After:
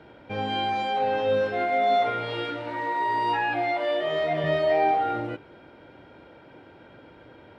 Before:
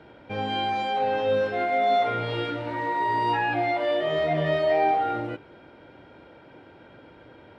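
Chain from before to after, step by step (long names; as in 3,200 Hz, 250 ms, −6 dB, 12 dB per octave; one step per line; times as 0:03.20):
0:02.10–0:04.44: low-shelf EQ 230 Hz −8.5 dB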